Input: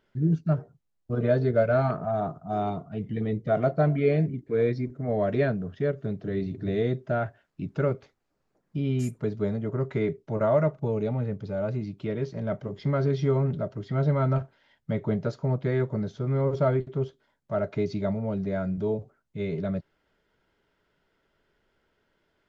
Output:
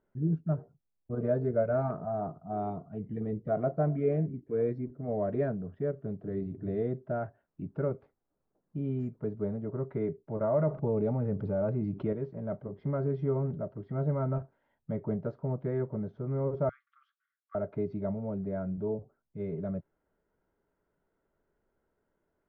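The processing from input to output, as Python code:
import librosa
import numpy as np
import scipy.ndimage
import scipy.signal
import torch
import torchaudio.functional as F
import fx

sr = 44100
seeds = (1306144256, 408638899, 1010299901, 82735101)

y = fx.env_flatten(x, sr, amount_pct=50, at=(10.56, 12.13))
y = fx.brickwall_highpass(y, sr, low_hz=1100.0, at=(16.69, 17.55))
y = scipy.signal.sosfilt(scipy.signal.butter(2, 1100.0, 'lowpass', fs=sr, output='sos'), y)
y = fx.peak_eq(y, sr, hz=120.0, db=-3.0, octaves=0.39)
y = F.gain(torch.from_numpy(y), -5.0).numpy()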